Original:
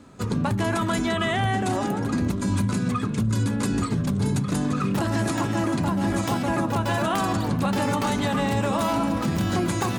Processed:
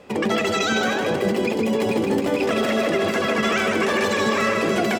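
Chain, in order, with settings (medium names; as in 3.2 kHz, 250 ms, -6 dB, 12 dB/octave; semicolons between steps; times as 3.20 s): low-pass 3.6 kHz 12 dB/octave; on a send: feedback delay 314 ms, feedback 45%, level -5 dB; on the sum: speed mistake 7.5 ips tape played at 15 ips; trim +1.5 dB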